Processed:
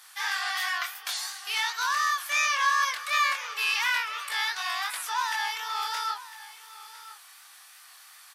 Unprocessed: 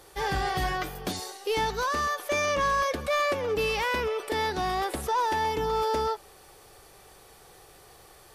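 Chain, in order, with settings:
high-pass filter 1,200 Hz 24 dB per octave
chorus effect 2.8 Hz, delay 19.5 ms, depth 7.5 ms
single-tap delay 1,005 ms −16.5 dB
level +8 dB

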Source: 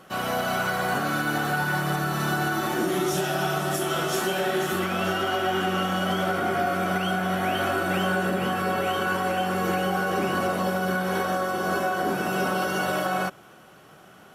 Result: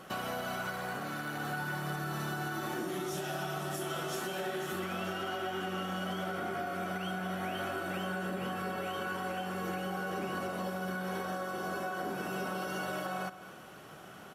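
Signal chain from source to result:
downward compressor 4 to 1, threshold −36 dBFS, peak gain reduction 12.5 dB
on a send: single-tap delay 210 ms −14 dB
0:00.71–0:01.40: on the sum: saturating transformer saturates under 600 Hz

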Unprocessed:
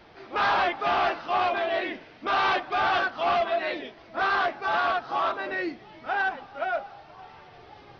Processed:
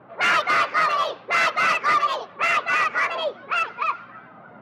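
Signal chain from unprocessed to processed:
adaptive Wiener filter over 9 samples
wrong playback speed 45 rpm record played at 78 rpm
low-pass that shuts in the quiet parts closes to 1,100 Hz, open at −24 dBFS
mains hum 60 Hz, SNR 33 dB
high-pass filter 120 Hz 24 dB per octave
high-shelf EQ 3,600 Hz −11 dB
level +7 dB

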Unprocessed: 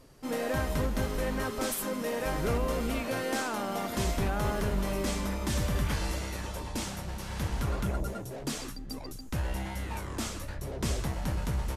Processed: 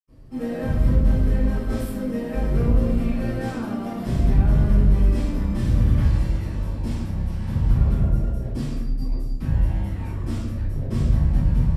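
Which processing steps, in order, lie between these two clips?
low-shelf EQ 320 Hz +11.5 dB
notch filter 6,500 Hz, Q 18
convolution reverb RT60 0.80 s, pre-delay 76 ms, DRR −60 dB
level −8 dB

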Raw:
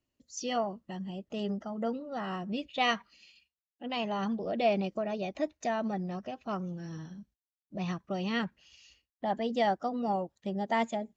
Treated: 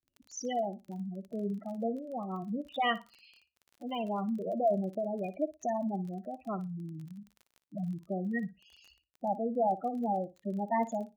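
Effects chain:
gate on every frequency bin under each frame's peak −10 dB strong
surface crackle 22 per second −43 dBFS
noise gate with hold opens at −58 dBFS
flutter between parallel walls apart 10 metres, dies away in 0.22 s

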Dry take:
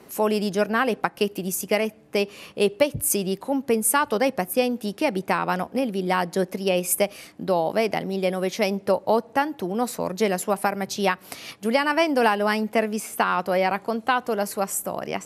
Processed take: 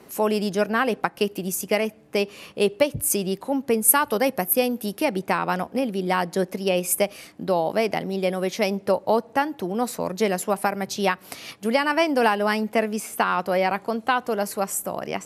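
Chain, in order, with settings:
0:03.88–0:05.05: parametric band 12,000 Hz +12 dB 0.45 octaves

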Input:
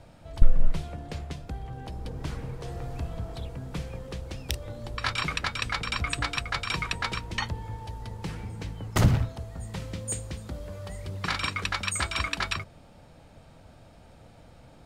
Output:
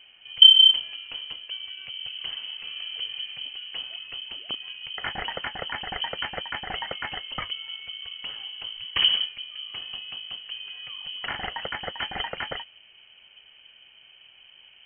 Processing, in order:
voice inversion scrambler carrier 3,100 Hz
level −2 dB

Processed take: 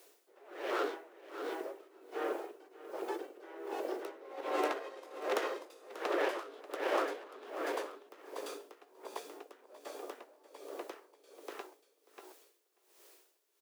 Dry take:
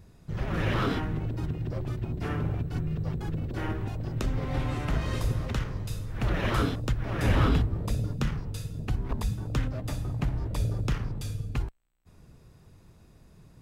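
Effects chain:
phase distortion by the signal itself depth 0.24 ms
source passing by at 0:05.11, 14 m/s, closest 14 metres
in parallel at 0 dB: downward compressor, threshold −42 dBFS, peak gain reduction 17.5 dB
on the sum: tilt shelving filter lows +8.5 dB, about 860 Hz
bit-depth reduction 12 bits, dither triangular
double-tracking delay 17 ms −11 dB
brickwall limiter −17.5 dBFS, peak gain reduction 10 dB
Butterworth high-pass 360 Hz 48 dB per octave
low-shelf EQ 490 Hz −7 dB
on a send: repeating echo 588 ms, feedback 26%, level −4.5 dB
on the sum: tremolo with a sine in dB 1.3 Hz, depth 20 dB
level +9.5 dB

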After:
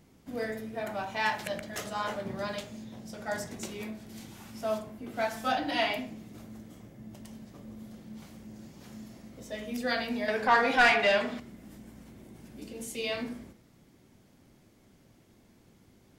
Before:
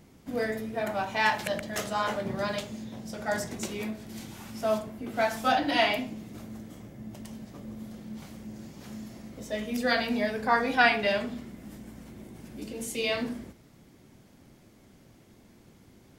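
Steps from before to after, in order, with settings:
hum removal 70.3 Hz, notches 36
0:10.28–0:11.40: mid-hump overdrive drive 17 dB, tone 3,100 Hz, clips at −8.5 dBFS
level −4 dB

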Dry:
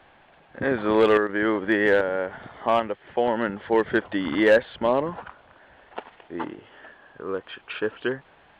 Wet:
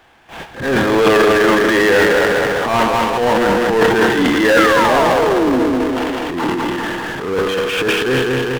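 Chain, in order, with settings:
sound drawn into the spectrogram fall, 0:04.44–0:05.60, 240–1,800 Hz −26 dBFS
high-shelf EQ 4,000 Hz +8 dB
on a send: repeating echo 201 ms, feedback 51%, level −5 dB
on the sum: spring reverb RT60 1.6 s, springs 31 ms, chirp 35 ms, DRR 8.5 dB
power curve on the samples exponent 0.5
noise gate with hold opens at −23 dBFS
notch filter 580 Hz, Q 12
transient designer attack −11 dB, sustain +11 dB
level +1.5 dB

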